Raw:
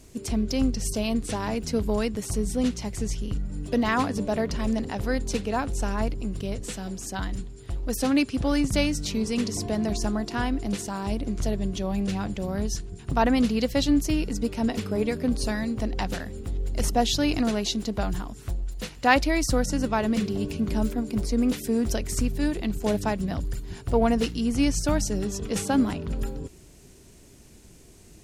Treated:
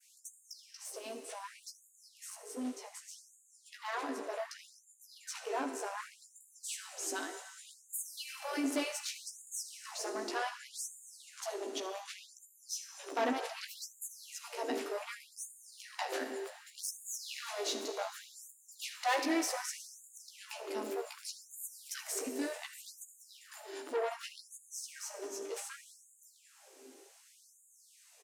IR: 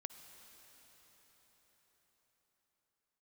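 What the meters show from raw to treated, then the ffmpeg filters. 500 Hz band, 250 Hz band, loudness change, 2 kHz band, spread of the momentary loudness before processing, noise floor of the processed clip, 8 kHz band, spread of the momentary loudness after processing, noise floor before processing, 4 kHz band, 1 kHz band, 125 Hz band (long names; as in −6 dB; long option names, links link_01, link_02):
−12.0 dB, −19.5 dB, −13.0 dB, −10.0 dB, 9 LU, −64 dBFS, −6.5 dB, 17 LU, −50 dBFS, −10.0 dB, −10.5 dB, below −40 dB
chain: -filter_complex "[0:a]adynamicequalizer=threshold=0.00562:dfrequency=3900:dqfactor=0.82:tfrequency=3900:tqfactor=0.82:attack=5:release=100:ratio=0.375:range=3.5:mode=cutabove:tftype=bell,aecho=1:1:15|79:0.668|0.168,asplit=2[link_01][link_02];[link_02]acompressor=threshold=-38dB:ratio=6,volume=2dB[link_03];[link_01][link_03]amix=inputs=2:normalize=0,asoftclip=type=tanh:threshold=-20.5dB,dynaudnorm=framelen=470:gausssize=21:maxgain=8dB[link_04];[1:a]atrim=start_sample=2205,asetrate=79380,aresample=44100[link_05];[link_04][link_05]afir=irnorm=-1:irlink=0,afftfilt=real='re*gte(b*sr/1024,240*pow(6700/240,0.5+0.5*sin(2*PI*0.66*pts/sr)))':imag='im*gte(b*sr/1024,240*pow(6700/240,0.5+0.5*sin(2*PI*0.66*pts/sr)))':win_size=1024:overlap=0.75,volume=-4dB"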